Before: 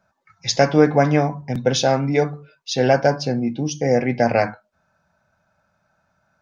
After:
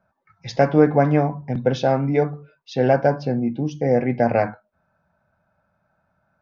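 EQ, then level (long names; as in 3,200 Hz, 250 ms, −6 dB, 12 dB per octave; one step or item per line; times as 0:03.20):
high-frequency loss of the air 130 metres
high-shelf EQ 2,600 Hz −10.5 dB
0.0 dB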